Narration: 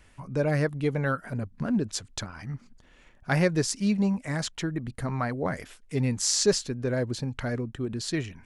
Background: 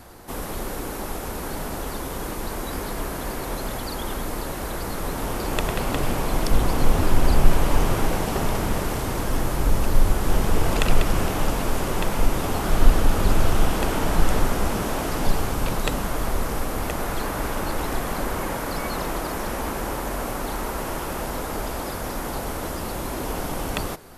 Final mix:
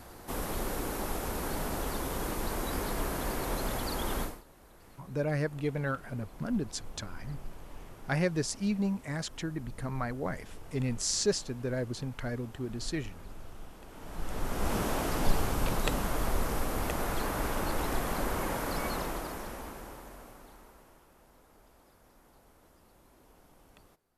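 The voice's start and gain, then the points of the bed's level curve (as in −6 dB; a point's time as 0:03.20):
4.80 s, −5.5 dB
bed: 0:04.23 −4 dB
0:04.44 −27.5 dB
0:13.85 −27.5 dB
0:14.74 −5.5 dB
0:18.88 −5.5 dB
0:21.09 −32 dB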